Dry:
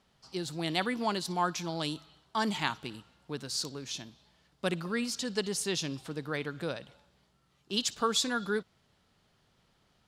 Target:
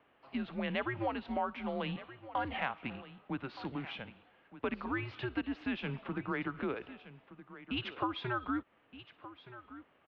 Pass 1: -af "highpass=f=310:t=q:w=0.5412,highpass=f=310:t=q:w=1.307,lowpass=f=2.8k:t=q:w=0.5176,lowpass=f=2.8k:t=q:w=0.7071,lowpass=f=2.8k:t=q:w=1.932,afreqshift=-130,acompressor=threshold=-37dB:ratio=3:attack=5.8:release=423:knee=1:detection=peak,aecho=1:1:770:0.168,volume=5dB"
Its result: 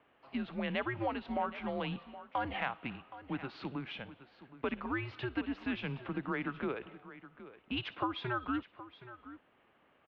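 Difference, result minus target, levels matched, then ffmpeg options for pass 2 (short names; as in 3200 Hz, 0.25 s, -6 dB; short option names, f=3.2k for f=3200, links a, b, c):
echo 0.45 s early
-af "highpass=f=310:t=q:w=0.5412,highpass=f=310:t=q:w=1.307,lowpass=f=2.8k:t=q:w=0.5176,lowpass=f=2.8k:t=q:w=0.7071,lowpass=f=2.8k:t=q:w=1.932,afreqshift=-130,acompressor=threshold=-37dB:ratio=3:attack=5.8:release=423:knee=1:detection=peak,aecho=1:1:1220:0.168,volume=5dB"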